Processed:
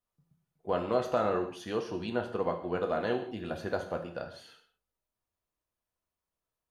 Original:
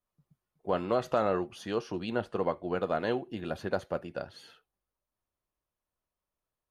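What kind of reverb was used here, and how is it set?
gated-style reverb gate 220 ms falling, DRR 4.5 dB; trim -2 dB

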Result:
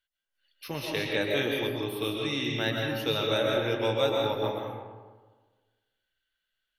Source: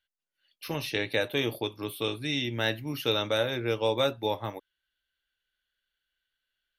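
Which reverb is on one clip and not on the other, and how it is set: algorithmic reverb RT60 1.4 s, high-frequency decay 0.5×, pre-delay 90 ms, DRR -1 dB; trim -2.5 dB

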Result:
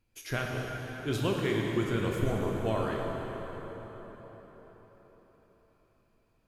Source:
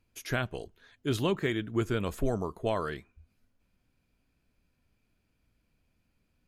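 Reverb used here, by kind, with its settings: plate-style reverb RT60 4.9 s, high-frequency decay 0.7×, DRR -1.5 dB; trim -3 dB

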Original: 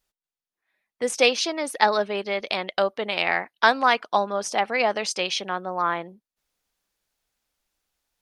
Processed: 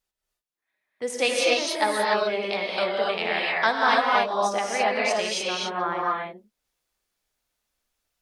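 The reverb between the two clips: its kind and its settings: gated-style reverb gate 320 ms rising, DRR -4 dB; trim -5.5 dB

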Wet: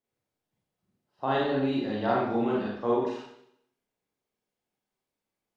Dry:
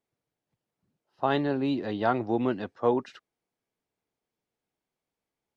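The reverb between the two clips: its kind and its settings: Schroeder reverb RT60 0.73 s, combs from 30 ms, DRR -5.5 dB; trim -6 dB

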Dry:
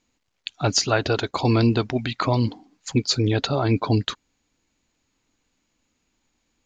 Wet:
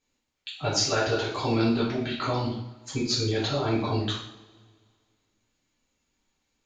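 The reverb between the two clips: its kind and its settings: two-slope reverb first 0.58 s, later 2 s, from -21 dB, DRR -8.5 dB; trim -12.5 dB

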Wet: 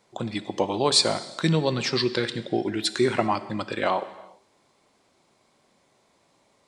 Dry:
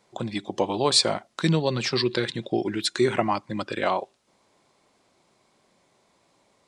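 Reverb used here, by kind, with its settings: gated-style reverb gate 420 ms falling, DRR 12 dB

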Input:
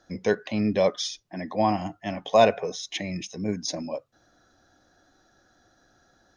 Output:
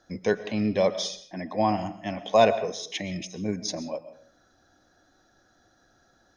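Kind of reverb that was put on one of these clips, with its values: algorithmic reverb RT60 0.53 s, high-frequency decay 0.55×, pre-delay 85 ms, DRR 13.5 dB; trim -1 dB

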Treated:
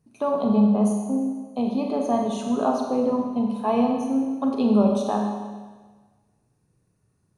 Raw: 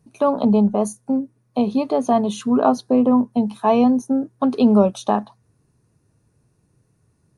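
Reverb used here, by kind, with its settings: Schroeder reverb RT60 1.4 s, combs from 30 ms, DRR 1 dB; trim -7.5 dB

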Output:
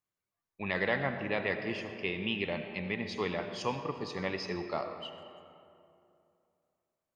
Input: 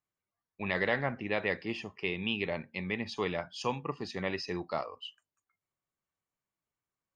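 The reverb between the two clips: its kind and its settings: algorithmic reverb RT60 2.7 s, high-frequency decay 0.5×, pre-delay 40 ms, DRR 7 dB; trim -1 dB

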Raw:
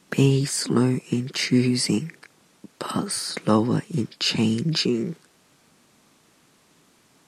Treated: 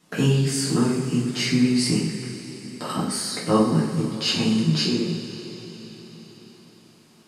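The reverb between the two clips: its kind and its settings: two-slope reverb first 0.57 s, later 4.9 s, from -16 dB, DRR -6 dB; trim -6.5 dB

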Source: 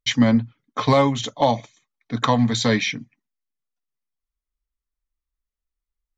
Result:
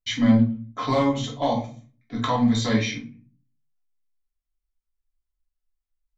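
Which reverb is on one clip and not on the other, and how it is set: simulated room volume 250 m³, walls furnished, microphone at 3 m; trim -10 dB

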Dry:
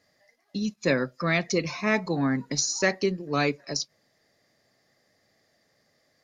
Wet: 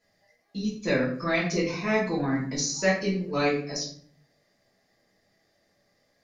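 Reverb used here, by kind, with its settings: simulated room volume 59 m³, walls mixed, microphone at 1.5 m; trim -8.5 dB

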